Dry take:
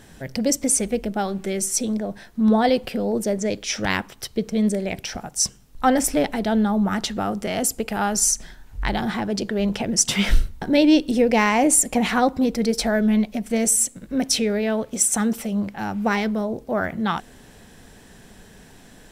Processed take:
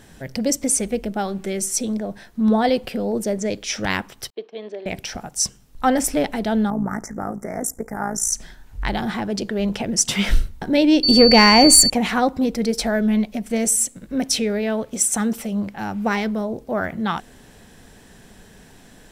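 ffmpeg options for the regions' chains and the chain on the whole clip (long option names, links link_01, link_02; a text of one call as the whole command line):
ffmpeg -i in.wav -filter_complex "[0:a]asettb=1/sr,asplit=3[link_01][link_02][link_03];[link_01]atrim=end=4.304[link_04];[link_02]atrim=start=4.3:end=4.86,asetpts=PTS-STARTPTS,afade=type=in:duration=0.004:curve=qsin,afade=type=out:start_time=0.556:duration=0.004:curve=qsin,agate=range=-33dB:threshold=-33dB:ratio=3:release=100:detection=peak,highpass=frequency=410:width=0.5412,highpass=frequency=410:width=1.3066,equalizer=frequency=540:width_type=q:width=4:gain=-9,equalizer=frequency=1400:width_type=q:width=4:gain=-6,equalizer=frequency=2100:width_type=q:width=4:gain=-8,lowpass=frequency=3400:width=0.5412,lowpass=frequency=3400:width=1.3066[link_05];[link_03]atrim=start=4.856[link_06];[link_04][link_05]acrossfade=duration=0.004:curve1=hsin:curve2=qsin[link_07];[link_07][link_06]acrossfade=duration=0.004:curve1=qsin:curve2=hsin,asettb=1/sr,asplit=3[link_08][link_09][link_10];[link_08]atrim=end=6.704[link_11];[link_09]atrim=start=6.7:end=8.32,asetpts=PTS-STARTPTS,afade=type=in:duration=0.004:curve=qsin,afade=type=out:start_time=1.616:duration=0.004:curve=qsin,tremolo=f=56:d=0.71,asuperstop=centerf=3400:order=12:qfactor=1[link_12];[link_10]atrim=start=8.316[link_13];[link_11][link_12]acrossfade=duration=0.004:curve1=hsin:curve2=qsin[link_14];[link_14][link_13]acrossfade=duration=0.004:curve1=qsin:curve2=hsin,asettb=1/sr,asplit=3[link_15][link_16][link_17];[link_15]atrim=end=11.034[link_18];[link_16]atrim=start=11.03:end=11.9,asetpts=PTS-STARTPTS,afade=type=in:duration=0.004:curve=qsin,afade=type=out:start_time=0.866:duration=0.004:curve=qsin,asubboost=boost=7:cutoff=210,acontrast=72,aeval=exprs='val(0)+0.178*sin(2*PI*4500*n/s)':channel_layout=same[link_19];[link_17]atrim=start=11.896[link_20];[link_18][link_19]acrossfade=duration=0.004:curve1=hsin:curve2=qsin[link_21];[link_21][link_20]acrossfade=duration=0.004:curve1=qsin:curve2=hsin" out.wav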